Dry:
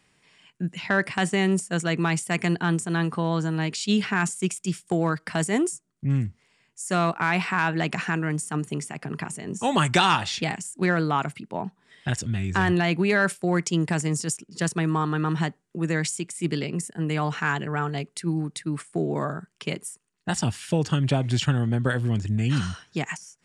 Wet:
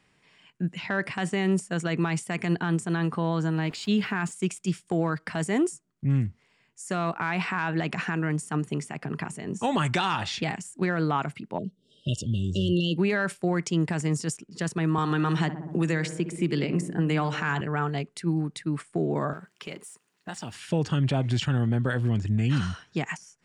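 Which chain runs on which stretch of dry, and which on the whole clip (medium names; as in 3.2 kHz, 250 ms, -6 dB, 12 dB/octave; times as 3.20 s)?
3.57–4.32 s: small samples zeroed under -41 dBFS + treble shelf 8.5 kHz -9 dB + band-stop 5.8 kHz, Q 9.1
11.58–12.98 s: brick-wall FIR band-stop 640–2700 Hz + dynamic bell 3 kHz, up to +7 dB, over -50 dBFS, Q 2.3
14.98–17.61 s: filtered feedback delay 62 ms, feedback 71%, low-pass 1.2 kHz, level -12 dB + three bands compressed up and down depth 100%
19.33–20.55 s: companding laws mixed up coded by mu + high-pass 310 Hz 6 dB/octave + compression 2:1, threshold -37 dBFS
whole clip: treble shelf 5.9 kHz -9.5 dB; peak limiter -16 dBFS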